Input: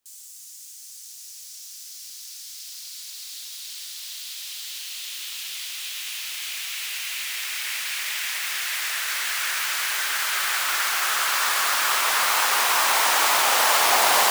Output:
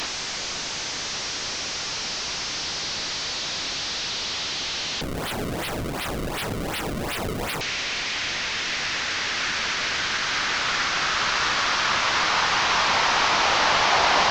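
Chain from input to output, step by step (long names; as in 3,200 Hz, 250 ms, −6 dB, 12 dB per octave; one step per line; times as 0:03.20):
linear delta modulator 32 kbit/s, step −21.5 dBFS
0:05.01–0:07.61: sample-and-hold swept by an LFO 30×, swing 160% 2.7 Hz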